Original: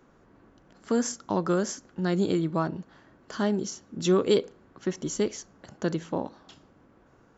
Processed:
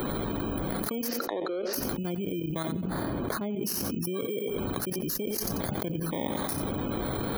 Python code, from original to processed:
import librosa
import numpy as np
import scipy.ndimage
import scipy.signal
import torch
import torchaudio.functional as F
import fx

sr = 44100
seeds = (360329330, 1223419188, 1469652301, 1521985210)

y = fx.bit_reversed(x, sr, seeds[0], block=16)
y = fx.spec_gate(y, sr, threshold_db=-25, keep='strong')
y = fx.high_shelf(y, sr, hz=2500.0, db=-11.0, at=(2.7, 3.62))
y = fx.level_steps(y, sr, step_db=13)
y = fx.cabinet(y, sr, low_hz=310.0, low_slope=24, high_hz=4200.0, hz=(490.0, 1000.0, 2200.0, 3200.0), db=(7, -8, -7, -8), at=(1.07, 1.73), fade=0.02)
y = fx.echo_feedback(y, sr, ms=90, feedback_pct=19, wet_db=-19)
y = fx.env_flatten(y, sr, amount_pct=100)
y = y * librosa.db_to_amplitude(-6.0)